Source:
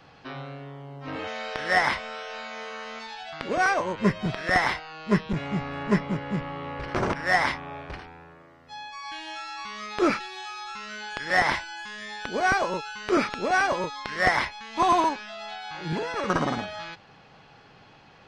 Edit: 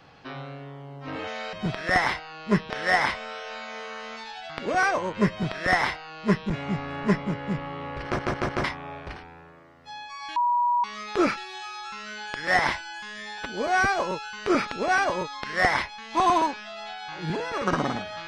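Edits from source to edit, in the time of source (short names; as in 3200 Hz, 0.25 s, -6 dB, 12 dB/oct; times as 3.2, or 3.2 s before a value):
4.13–5.3 copy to 1.53
6.87 stutter in place 0.15 s, 4 plays
9.19–9.67 bleep 966 Hz -19.5 dBFS
12.21–12.62 stretch 1.5×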